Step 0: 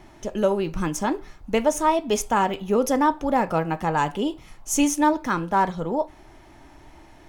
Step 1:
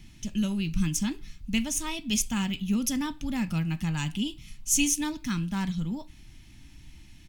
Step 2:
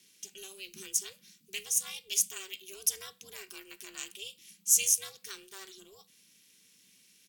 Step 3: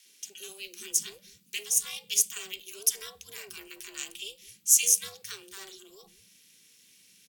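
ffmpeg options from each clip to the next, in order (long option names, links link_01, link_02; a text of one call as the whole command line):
ffmpeg -i in.wav -af "firequalizer=gain_entry='entry(210,0);entry(440,-28);entry(2600,0)':delay=0.05:min_phase=1,volume=2dB" out.wav
ffmpeg -i in.wav -af "aeval=exprs='val(0)*sin(2*PI*190*n/s)':channel_layout=same,aderivative,volume=4.5dB" out.wav
ffmpeg -i in.wav -filter_complex "[0:a]acrossover=split=230|950[link_01][link_02][link_03];[link_02]adelay=50[link_04];[link_01]adelay=250[link_05];[link_05][link_04][link_03]amix=inputs=3:normalize=0,volume=3.5dB" out.wav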